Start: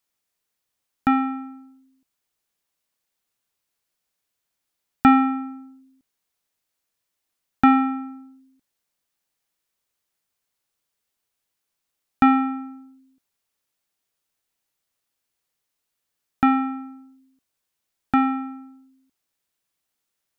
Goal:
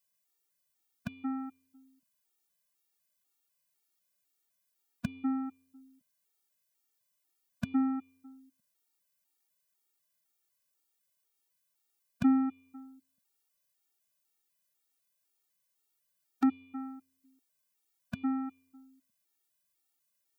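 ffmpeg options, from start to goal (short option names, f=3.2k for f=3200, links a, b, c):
-filter_complex "[0:a]highpass=100,acrossover=split=340[a][b];[b]acompressor=threshold=-35dB:ratio=5[c];[a][c]amix=inputs=2:normalize=0,crystalizer=i=1:c=0,afftfilt=real='re*gt(sin(2*PI*2*pts/sr)*(1-2*mod(floor(b*sr/1024/240),2)),0)':imag='im*gt(sin(2*PI*2*pts/sr)*(1-2*mod(floor(b*sr/1024/240),2)),0)':win_size=1024:overlap=0.75,volume=-3dB"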